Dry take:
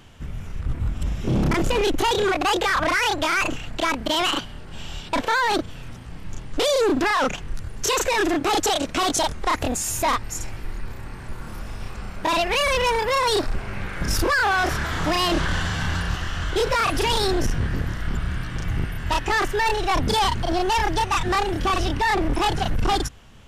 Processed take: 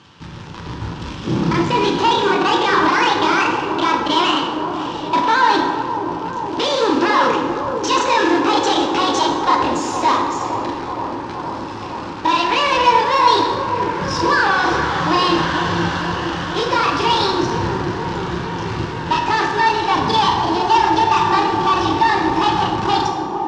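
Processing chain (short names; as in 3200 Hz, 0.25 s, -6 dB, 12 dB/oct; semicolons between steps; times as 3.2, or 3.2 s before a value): bell 370 Hz -4.5 dB 1.2 oct; companded quantiser 4-bit; speaker cabinet 140–5400 Hz, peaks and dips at 170 Hz +3 dB, 320 Hz +4 dB, 670 Hz -9 dB, 950 Hz +7 dB, 2100 Hz -5 dB; band-limited delay 0.469 s, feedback 78%, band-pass 450 Hz, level -5.5 dB; plate-style reverb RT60 1.6 s, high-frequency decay 0.6×, DRR 1 dB; gain +3 dB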